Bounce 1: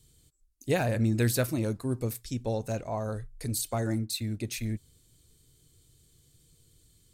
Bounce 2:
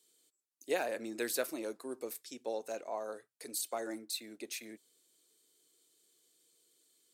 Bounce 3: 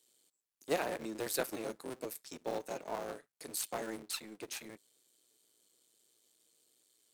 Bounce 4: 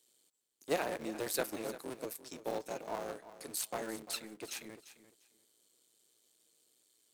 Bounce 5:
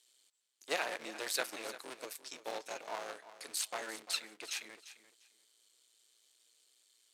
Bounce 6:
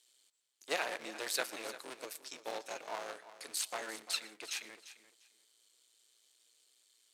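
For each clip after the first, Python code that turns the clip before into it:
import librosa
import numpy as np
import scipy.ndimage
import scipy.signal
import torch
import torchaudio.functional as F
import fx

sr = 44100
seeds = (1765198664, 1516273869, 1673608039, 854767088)

y1 = scipy.signal.sosfilt(scipy.signal.butter(4, 330.0, 'highpass', fs=sr, output='sos'), x)
y1 = F.gain(torch.from_numpy(y1), -5.0).numpy()
y2 = fx.cycle_switch(y1, sr, every=3, mode='muted')
y2 = F.gain(torch.from_numpy(y2), 1.0).numpy()
y3 = fx.echo_feedback(y2, sr, ms=346, feedback_pct=19, wet_db=-14.5)
y4 = fx.bandpass_q(y3, sr, hz=3100.0, q=0.53)
y4 = F.gain(torch.from_numpy(y4), 5.5).numpy()
y5 = y4 + 10.0 ** (-21.5 / 20.0) * np.pad(y4, (int(117 * sr / 1000.0), 0))[:len(y4)]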